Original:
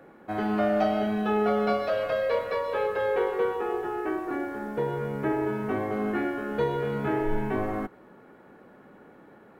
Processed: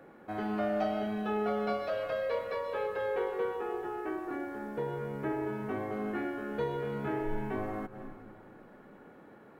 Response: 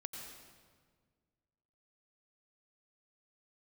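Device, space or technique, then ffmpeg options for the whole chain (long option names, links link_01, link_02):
ducked reverb: -filter_complex "[0:a]asplit=3[link_01][link_02][link_03];[1:a]atrim=start_sample=2205[link_04];[link_02][link_04]afir=irnorm=-1:irlink=0[link_05];[link_03]apad=whole_len=423229[link_06];[link_05][link_06]sidechaincompress=threshold=-47dB:ratio=5:attack=34:release=128,volume=2dB[link_07];[link_01][link_07]amix=inputs=2:normalize=0,volume=-7.5dB"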